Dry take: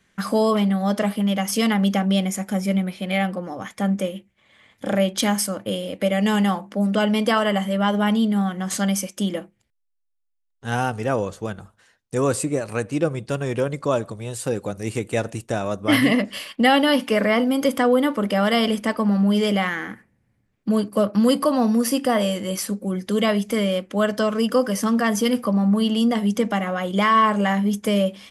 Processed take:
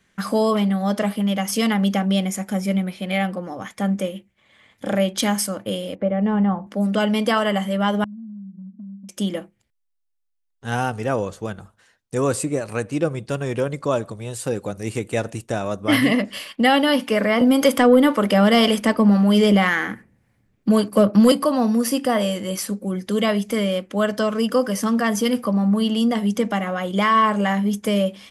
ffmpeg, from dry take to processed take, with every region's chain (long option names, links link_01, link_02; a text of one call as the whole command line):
ffmpeg -i in.wav -filter_complex "[0:a]asettb=1/sr,asplit=3[link_01][link_02][link_03];[link_01]atrim=end=5.954[link_04];[link_02]atrim=start=5.95:end=6.67,asetpts=PTS-STARTPTS,afade=type=in:duration=0.004:curve=qsin,afade=type=out:start_time=0.716:duration=0.004:curve=qsin,lowpass=1100,asubboost=boost=11:cutoff=170[link_05];[link_03]atrim=start=6.666[link_06];[link_04][link_05]acrossfade=duration=0.004:curve1=hsin:curve2=qsin[link_07];[link_07][link_06]acrossfade=duration=0.004:curve1=qsin:curve2=hsin,asettb=1/sr,asplit=3[link_08][link_09][link_10];[link_08]atrim=end=8.044[link_11];[link_09]atrim=start=8.04:end=9.09,asetpts=PTS-STARTPTS,afade=type=in:duration=0.004:curve=qsin,afade=type=out:start_time=1.046:duration=0.004:curve=qsin,asuperpass=centerf=210:order=4:qfactor=5,acompressor=threshold=-34dB:ratio=12:attack=3.2:release=140:knee=1:detection=peak[link_12];[link_10]atrim=start=9.086[link_13];[link_11][link_12]acrossfade=duration=0.004:curve1=hsin:curve2=qsin[link_14];[link_14][link_13]acrossfade=duration=0.004:curve1=qsin:curve2=hsin,asettb=1/sr,asplit=3[link_15][link_16][link_17];[link_15]atrim=end=17.414[link_18];[link_16]atrim=start=17.41:end=21.32,asetpts=PTS-STARTPTS,afade=type=in:duration=0.004:curve=qsin,afade=type=out:start_time=3.906:duration=0.004:curve=qsin,acrossover=split=490[link_19][link_20];[link_19]aeval=exprs='val(0)*(1-0.5/2+0.5/2*cos(2*PI*1.9*n/s))':channel_layout=same[link_21];[link_20]aeval=exprs='val(0)*(1-0.5/2-0.5/2*cos(2*PI*1.9*n/s))':channel_layout=same[link_22];[link_21][link_22]amix=inputs=2:normalize=0,acontrast=89[link_23];[link_17]atrim=start=21.316[link_24];[link_18][link_23]acrossfade=duration=0.004:curve1=hsin:curve2=qsin[link_25];[link_25][link_24]acrossfade=duration=0.004:curve1=qsin:curve2=hsin" out.wav